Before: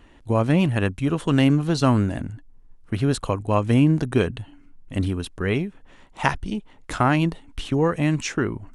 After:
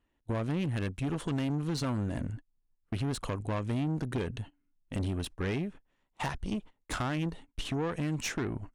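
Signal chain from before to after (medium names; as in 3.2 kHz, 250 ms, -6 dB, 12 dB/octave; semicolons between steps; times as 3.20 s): gate -37 dBFS, range -23 dB; compression 3:1, threshold -25 dBFS, peak gain reduction 9.5 dB; valve stage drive 27 dB, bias 0.5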